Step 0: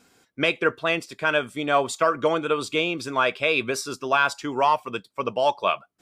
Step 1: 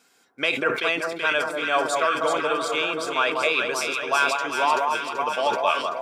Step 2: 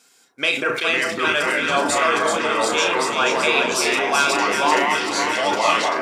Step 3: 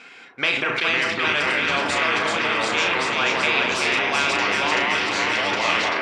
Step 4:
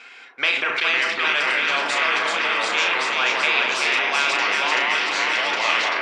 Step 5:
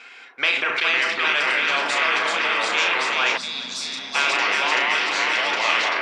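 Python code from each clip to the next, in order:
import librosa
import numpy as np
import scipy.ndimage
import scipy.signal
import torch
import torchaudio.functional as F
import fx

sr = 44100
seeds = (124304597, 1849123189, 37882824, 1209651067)

y1 = fx.highpass(x, sr, hz=690.0, slope=6)
y1 = fx.echo_alternate(y1, sr, ms=191, hz=1300.0, feedback_pct=80, wet_db=-3)
y1 = fx.sustainer(y1, sr, db_per_s=78.0)
y2 = fx.echo_pitch(y1, sr, ms=393, semitones=-4, count=2, db_per_echo=-3.0)
y2 = fx.peak_eq(y2, sr, hz=7700.0, db=8.0, octaves=2.2)
y2 = fx.doubler(y2, sr, ms=34.0, db=-7)
y3 = fx.lowpass_res(y2, sr, hz=2400.0, q=2.9)
y3 = fx.spectral_comp(y3, sr, ratio=2.0)
y3 = F.gain(torch.from_numpy(y3), -6.5).numpy()
y4 = fx.weighting(y3, sr, curve='A')
y5 = fx.spec_box(y4, sr, start_s=3.37, length_s=0.78, low_hz=290.0, high_hz=3300.0, gain_db=-16)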